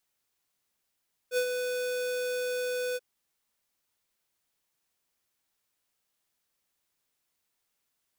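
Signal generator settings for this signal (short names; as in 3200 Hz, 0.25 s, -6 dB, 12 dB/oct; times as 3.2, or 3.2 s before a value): ADSR square 498 Hz, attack 63 ms, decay 80 ms, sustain -6 dB, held 1.65 s, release 34 ms -25.5 dBFS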